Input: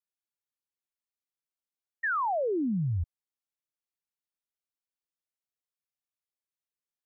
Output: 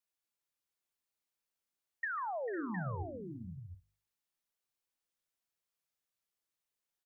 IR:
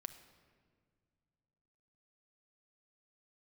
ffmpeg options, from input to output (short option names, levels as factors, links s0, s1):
-filter_complex "[0:a]bandreject=f=50:t=h:w=6,bandreject=f=100:t=h:w=6,bandreject=f=150:t=h:w=6,bandreject=f=200:t=h:w=6,bandreject=f=250:t=h:w=6,bandreject=f=300:t=h:w=6,bandreject=f=350:t=h:w=6,acompressor=threshold=0.01:ratio=8,aecho=1:1:143|446|503|536|711:0.15|0.211|0.237|0.106|0.376,asplit=2[s0][s1];[1:a]atrim=start_sample=2205,afade=t=out:st=0.13:d=0.01,atrim=end_sample=6174[s2];[s1][s2]afir=irnorm=-1:irlink=0,volume=1.33[s3];[s0][s3]amix=inputs=2:normalize=0,volume=0.75"